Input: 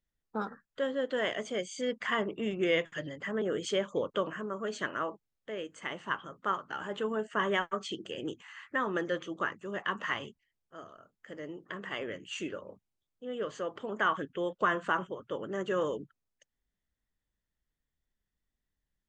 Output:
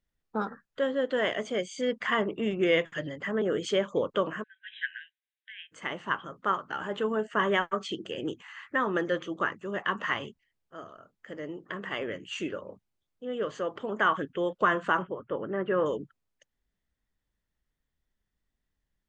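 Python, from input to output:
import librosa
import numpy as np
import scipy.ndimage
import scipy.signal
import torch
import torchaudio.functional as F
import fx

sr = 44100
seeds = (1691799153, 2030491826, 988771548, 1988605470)

y = fx.brickwall_bandpass(x, sr, low_hz=1500.0, high_hz=4000.0, at=(4.42, 5.71), fade=0.02)
y = fx.lowpass(y, sr, hz=2500.0, slope=24, at=(15.02, 15.86))
y = fx.high_shelf(y, sr, hz=6700.0, db=-9.0)
y = y * librosa.db_to_amplitude(4.0)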